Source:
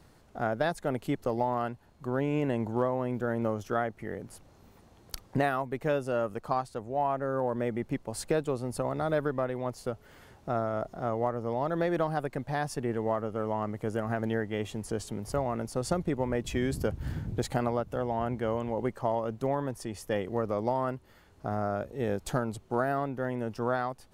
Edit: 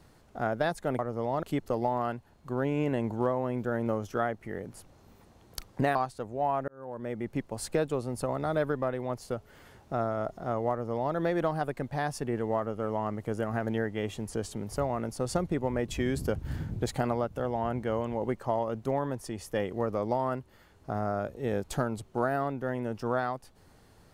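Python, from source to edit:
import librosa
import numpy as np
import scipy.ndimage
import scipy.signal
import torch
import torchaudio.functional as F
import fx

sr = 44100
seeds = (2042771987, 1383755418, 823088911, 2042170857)

y = fx.edit(x, sr, fx.cut(start_s=5.51, length_s=1.0),
    fx.fade_in_span(start_s=7.24, length_s=0.7),
    fx.duplicate(start_s=11.27, length_s=0.44, to_s=0.99), tone=tone)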